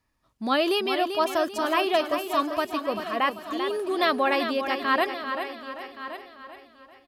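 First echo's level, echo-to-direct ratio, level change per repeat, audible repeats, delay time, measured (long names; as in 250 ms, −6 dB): −8.0 dB, −6.5 dB, repeats not evenly spaced, 8, 391 ms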